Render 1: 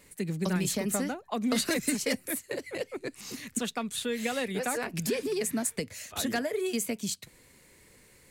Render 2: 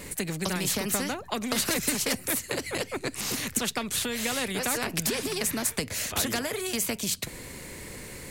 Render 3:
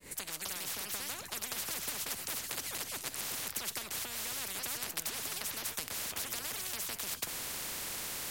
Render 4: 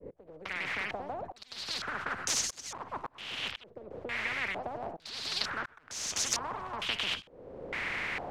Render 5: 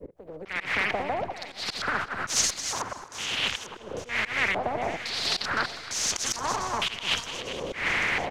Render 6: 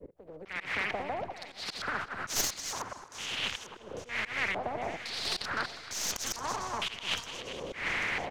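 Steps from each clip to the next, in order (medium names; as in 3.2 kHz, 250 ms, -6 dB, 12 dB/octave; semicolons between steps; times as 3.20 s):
bass shelf 380 Hz +10 dB; in parallel at +0.5 dB: compression, threshold -32 dBFS, peak gain reduction 14 dB; on the sum: spectrum-flattening compressor 2:1; trim -2.5 dB
fade-in on the opening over 1.26 s; feedback comb 69 Hz, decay 0.31 s, harmonics all, mix 30%; spectrum-flattening compressor 10:1; trim -3 dB
slow attack 538 ms; step-sequenced low-pass 2.2 Hz 500–6200 Hz; trim +5 dB
backward echo that repeats 424 ms, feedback 64%, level -14 dB; slow attack 148 ms; feedback delay 266 ms, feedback 54%, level -22 dB; trim +9 dB
tracing distortion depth 0.035 ms; trim -6 dB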